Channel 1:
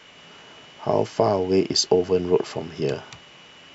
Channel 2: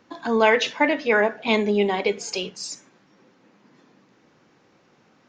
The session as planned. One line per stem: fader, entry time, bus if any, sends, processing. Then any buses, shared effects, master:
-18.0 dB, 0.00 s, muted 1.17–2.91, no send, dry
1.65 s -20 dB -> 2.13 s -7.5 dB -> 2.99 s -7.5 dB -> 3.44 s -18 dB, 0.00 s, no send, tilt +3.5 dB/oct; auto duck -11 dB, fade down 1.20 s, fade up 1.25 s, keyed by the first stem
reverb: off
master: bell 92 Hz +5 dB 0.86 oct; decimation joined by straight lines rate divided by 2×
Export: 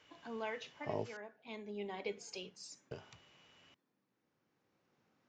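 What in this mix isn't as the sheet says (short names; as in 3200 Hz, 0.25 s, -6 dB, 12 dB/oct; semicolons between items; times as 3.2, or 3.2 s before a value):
stem 2: missing tilt +3.5 dB/oct; master: missing decimation joined by straight lines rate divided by 2×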